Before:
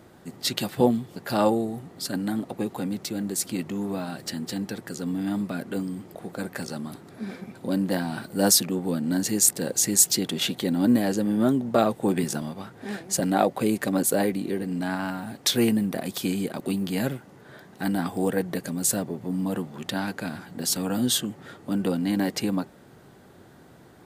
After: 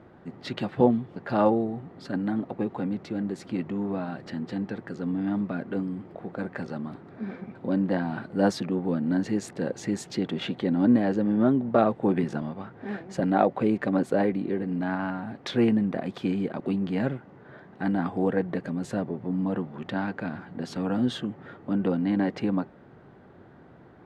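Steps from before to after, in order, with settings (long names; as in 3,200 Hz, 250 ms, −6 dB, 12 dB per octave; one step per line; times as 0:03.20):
low-pass filter 2,000 Hz 12 dB per octave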